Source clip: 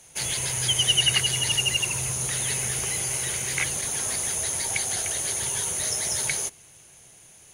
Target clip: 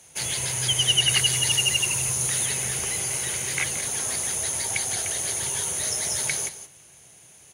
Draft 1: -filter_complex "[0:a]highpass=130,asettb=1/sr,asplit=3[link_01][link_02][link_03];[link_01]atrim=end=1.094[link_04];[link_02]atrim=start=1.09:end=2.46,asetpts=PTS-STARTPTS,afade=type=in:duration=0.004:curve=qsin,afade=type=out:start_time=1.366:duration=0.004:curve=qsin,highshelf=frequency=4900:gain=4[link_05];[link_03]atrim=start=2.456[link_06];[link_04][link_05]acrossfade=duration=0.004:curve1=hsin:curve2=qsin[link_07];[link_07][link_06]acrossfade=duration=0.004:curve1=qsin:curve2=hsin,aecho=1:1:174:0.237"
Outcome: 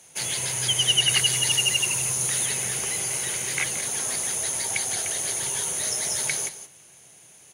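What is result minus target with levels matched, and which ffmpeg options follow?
125 Hz band −3.0 dB
-filter_complex "[0:a]highpass=59,asettb=1/sr,asplit=3[link_01][link_02][link_03];[link_01]atrim=end=1.094[link_04];[link_02]atrim=start=1.09:end=2.46,asetpts=PTS-STARTPTS,afade=type=in:duration=0.004:curve=qsin,afade=type=out:start_time=1.366:duration=0.004:curve=qsin,highshelf=frequency=4900:gain=4[link_05];[link_03]atrim=start=2.456[link_06];[link_04][link_05]acrossfade=duration=0.004:curve1=hsin:curve2=qsin[link_07];[link_07][link_06]acrossfade=duration=0.004:curve1=qsin:curve2=hsin,aecho=1:1:174:0.237"

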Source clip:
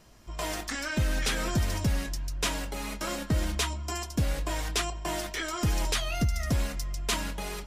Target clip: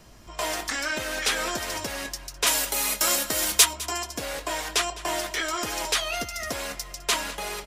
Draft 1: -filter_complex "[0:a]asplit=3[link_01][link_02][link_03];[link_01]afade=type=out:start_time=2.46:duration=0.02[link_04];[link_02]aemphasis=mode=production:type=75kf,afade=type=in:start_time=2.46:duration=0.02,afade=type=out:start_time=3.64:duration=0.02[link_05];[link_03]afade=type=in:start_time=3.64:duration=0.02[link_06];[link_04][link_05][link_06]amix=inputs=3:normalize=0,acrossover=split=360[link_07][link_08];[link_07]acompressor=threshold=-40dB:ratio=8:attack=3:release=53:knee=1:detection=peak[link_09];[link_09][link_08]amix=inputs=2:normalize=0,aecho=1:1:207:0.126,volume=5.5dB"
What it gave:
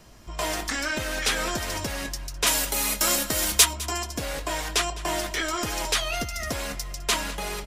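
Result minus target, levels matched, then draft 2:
downward compressor: peak gain reduction −9 dB
-filter_complex "[0:a]asplit=3[link_01][link_02][link_03];[link_01]afade=type=out:start_time=2.46:duration=0.02[link_04];[link_02]aemphasis=mode=production:type=75kf,afade=type=in:start_time=2.46:duration=0.02,afade=type=out:start_time=3.64:duration=0.02[link_05];[link_03]afade=type=in:start_time=3.64:duration=0.02[link_06];[link_04][link_05][link_06]amix=inputs=3:normalize=0,acrossover=split=360[link_07][link_08];[link_07]acompressor=threshold=-50dB:ratio=8:attack=3:release=53:knee=1:detection=peak[link_09];[link_09][link_08]amix=inputs=2:normalize=0,aecho=1:1:207:0.126,volume=5.5dB"

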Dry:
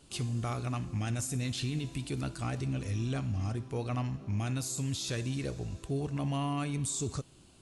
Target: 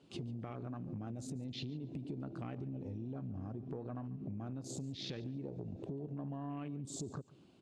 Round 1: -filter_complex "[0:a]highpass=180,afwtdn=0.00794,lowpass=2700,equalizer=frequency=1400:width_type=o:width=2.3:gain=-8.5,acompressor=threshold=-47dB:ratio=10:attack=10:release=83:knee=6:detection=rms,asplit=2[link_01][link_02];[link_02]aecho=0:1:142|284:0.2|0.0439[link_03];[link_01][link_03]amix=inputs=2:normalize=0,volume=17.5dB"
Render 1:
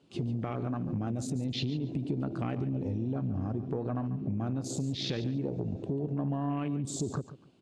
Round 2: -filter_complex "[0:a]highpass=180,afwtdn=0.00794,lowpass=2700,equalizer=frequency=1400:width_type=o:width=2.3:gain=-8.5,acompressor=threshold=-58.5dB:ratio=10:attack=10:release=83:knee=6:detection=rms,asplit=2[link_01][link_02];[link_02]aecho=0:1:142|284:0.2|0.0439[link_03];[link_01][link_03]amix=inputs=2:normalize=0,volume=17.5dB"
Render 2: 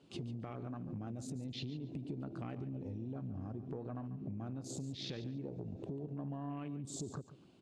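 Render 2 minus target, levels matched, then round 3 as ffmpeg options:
echo-to-direct +6.5 dB
-filter_complex "[0:a]highpass=180,afwtdn=0.00794,lowpass=2700,equalizer=frequency=1400:width_type=o:width=2.3:gain=-8.5,acompressor=threshold=-58.5dB:ratio=10:attack=10:release=83:knee=6:detection=rms,asplit=2[link_01][link_02];[link_02]aecho=0:1:142|284:0.0944|0.0208[link_03];[link_01][link_03]amix=inputs=2:normalize=0,volume=17.5dB"

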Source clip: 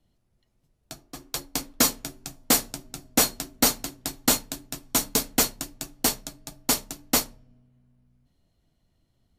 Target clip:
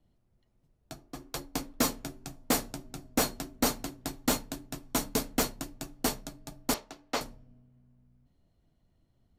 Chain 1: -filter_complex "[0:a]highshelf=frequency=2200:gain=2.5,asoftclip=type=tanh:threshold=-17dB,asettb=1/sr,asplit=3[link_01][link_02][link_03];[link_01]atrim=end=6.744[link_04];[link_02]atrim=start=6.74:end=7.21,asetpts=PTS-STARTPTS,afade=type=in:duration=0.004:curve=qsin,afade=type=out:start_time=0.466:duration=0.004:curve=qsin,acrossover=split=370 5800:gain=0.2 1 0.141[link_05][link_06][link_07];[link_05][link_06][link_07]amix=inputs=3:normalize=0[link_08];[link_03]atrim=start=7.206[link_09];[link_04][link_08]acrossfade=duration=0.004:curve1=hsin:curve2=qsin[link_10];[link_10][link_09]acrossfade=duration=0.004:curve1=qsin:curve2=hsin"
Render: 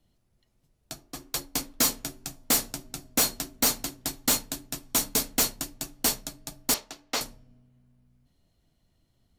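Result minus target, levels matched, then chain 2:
2,000 Hz band −3.0 dB
-filter_complex "[0:a]highshelf=frequency=2200:gain=-9,asoftclip=type=tanh:threshold=-17dB,asettb=1/sr,asplit=3[link_01][link_02][link_03];[link_01]atrim=end=6.744[link_04];[link_02]atrim=start=6.74:end=7.21,asetpts=PTS-STARTPTS,afade=type=in:duration=0.004:curve=qsin,afade=type=out:start_time=0.466:duration=0.004:curve=qsin,acrossover=split=370 5800:gain=0.2 1 0.141[link_05][link_06][link_07];[link_05][link_06][link_07]amix=inputs=3:normalize=0[link_08];[link_03]atrim=start=7.206[link_09];[link_04][link_08]acrossfade=duration=0.004:curve1=hsin:curve2=qsin[link_10];[link_10][link_09]acrossfade=duration=0.004:curve1=qsin:curve2=hsin"

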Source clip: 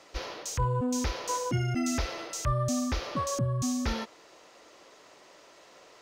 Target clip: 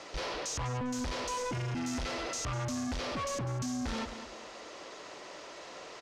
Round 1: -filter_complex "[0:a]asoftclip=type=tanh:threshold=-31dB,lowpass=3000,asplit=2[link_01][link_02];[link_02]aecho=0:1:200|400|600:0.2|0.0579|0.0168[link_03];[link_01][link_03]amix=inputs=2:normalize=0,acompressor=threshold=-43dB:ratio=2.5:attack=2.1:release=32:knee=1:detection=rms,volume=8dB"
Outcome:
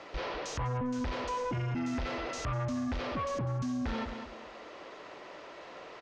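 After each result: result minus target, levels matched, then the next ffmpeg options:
8,000 Hz band −11.0 dB; soft clipping: distortion −4 dB
-filter_complex "[0:a]asoftclip=type=tanh:threshold=-31dB,lowpass=7700,asplit=2[link_01][link_02];[link_02]aecho=0:1:200|400|600:0.2|0.0579|0.0168[link_03];[link_01][link_03]amix=inputs=2:normalize=0,acompressor=threshold=-43dB:ratio=2.5:attack=2.1:release=32:knee=1:detection=rms,volume=8dB"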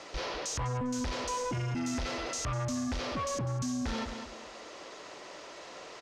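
soft clipping: distortion −4 dB
-filter_complex "[0:a]asoftclip=type=tanh:threshold=-37.5dB,lowpass=7700,asplit=2[link_01][link_02];[link_02]aecho=0:1:200|400|600:0.2|0.0579|0.0168[link_03];[link_01][link_03]amix=inputs=2:normalize=0,acompressor=threshold=-43dB:ratio=2.5:attack=2.1:release=32:knee=1:detection=rms,volume=8dB"

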